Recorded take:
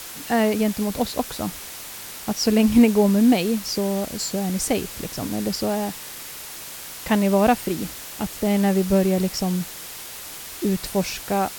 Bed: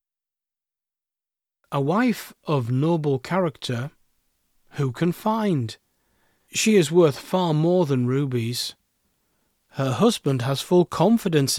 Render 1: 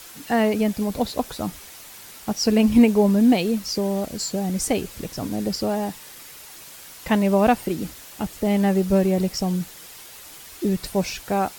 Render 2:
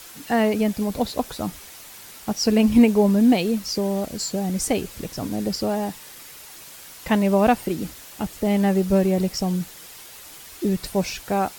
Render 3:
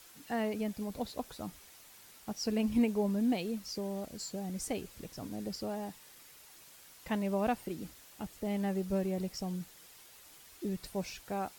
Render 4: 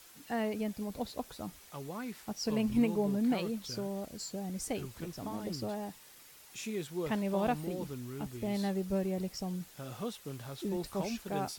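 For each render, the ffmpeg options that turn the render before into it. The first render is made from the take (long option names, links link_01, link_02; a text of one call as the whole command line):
ffmpeg -i in.wav -af "afftdn=noise_reduction=7:noise_floor=-37" out.wav
ffmpeg -i in.wav -af anull out.wav
ffmpeg -i in.wav -af "volume=-14dB" out.wav
ffmpeg -i in.wav -i bed.wav -filter_complex "[1:a]volume=-20.5dB[link_01];[0:a][link_01]amix=inputs=2:normalize=0" out.wav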